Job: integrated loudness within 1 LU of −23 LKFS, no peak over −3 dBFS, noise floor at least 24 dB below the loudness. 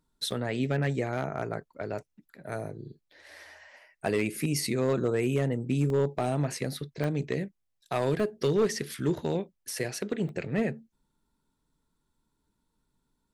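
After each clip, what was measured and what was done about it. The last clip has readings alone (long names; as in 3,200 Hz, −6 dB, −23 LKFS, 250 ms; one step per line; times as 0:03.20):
share of clipped samples 0.5%; peaks flattened at −19.0 dBFS; number of dropouts 6; longest dropout 1.2 ms; integrated loudness −30.5 LKFS; sample peak −19.0 dBFS; target loudness −23.0 LKFS
→ clipped peaks rebuilt −19 dBFS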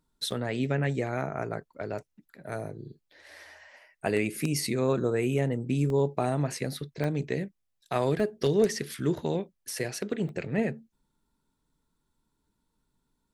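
share of clipped samples 0.0%; number of dropouts 6; longest dropout 1.2 ms
→ repair the gap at 0:00.31/0:05.33/0:05.90/0:07.04/0:08.20/0:10.29, 1.2 ms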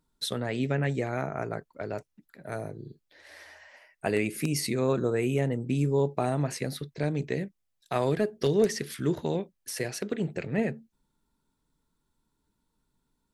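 number of dropouts 0; integrated loudness −30.0 LKFS; sample peak −11.5 dBFS; target loudness −23.0 LKFS
→ level +7 dB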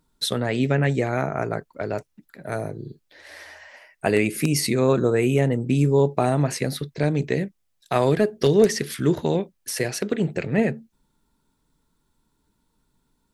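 integrated loudness −23.0 LKFS; sample peak −4.5 dBFS; background noise floor −71 dBFS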